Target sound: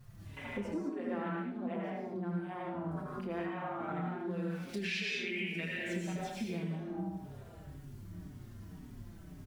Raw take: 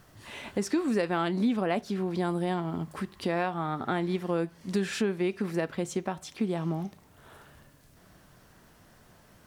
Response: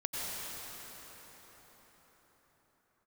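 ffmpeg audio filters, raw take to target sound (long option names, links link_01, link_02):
-filter_complex "[0:a]aeval=exprs='val(0)+0.5*0.00794*sgn(val(0))':channel_layout=same,afwtdn=0.0126,asplit=3[link_01][link_02][link_03];[link_01]afade=type=out:start_time=4.29:duration=0.02[link_04];[link_02]highshelf=frequency=1600:width_type=q:width=3:gain=13,afade=type=in:start_time=4.29:duration=0.02,afade=type=out:start_time=6.72:duration=0.02[link_05];[link_03]afade=type=in:start_time=6.72:duration=0.02[link_06];[link_04][link_05][link_06]amix=inputs=3:normalize=0,asplit=2[link_07][link_08];[link_08]adelay=79,lowpass=frequency=2600:poles=1,volume=-4dB,asplit=2[link_09][link_10];[link_10]adelay=79,lowpass=frequency=2600:poles=1,volume=0.53,asplit=2[link_11][link_12];[link_12]adelay=79,lowpass=frequency=2600:poles=1,volume=0.53,asplit=2[link_13][link_14];[link_14]adelay=79,lowpass=frequency=2600:poles=1,volume=0.53,asplit=2[link_15][link_16];[link_16]adelay=79,lowpass=frequency=2600:poles=1,volume=0.53,asplit=2[link_17][link_18];[link_18]adelay=79,lowpass=frequency=2600:poles=1,volume=0.53,asplit=2[link_19][link_20];[link_20]adelay=79,lowpass=frequency=2600:poles=1,volume=0.53[link_21];[link_07][link_09][link_11][link_13][link_15][link_17][link_19][link_21]amix=inputs=8:normalize=0[link_22];[1:a]atrim=start_sample=2205,afade=type=out:start_time=0.3:duration=0.01,atrim=end_sample=13671,asetrate=48510,aresample=44100[link_23];[link_22][link_23]afir=irnorm=-1:irlink=0,acompressor=threshold=-33dB:ratio=5,asplit=2[link_24][link_25];[link_25]adelay=29,volume=-10.5dB[link_26];[link_24][link_26]amix=inputs=2:normalize=0,asplit=2[link_27][link_28];[link_28]adelay=5.1,afreqshift=-1.9[link_29];[link_27][link_29]amix=inputs=2:normalize=1"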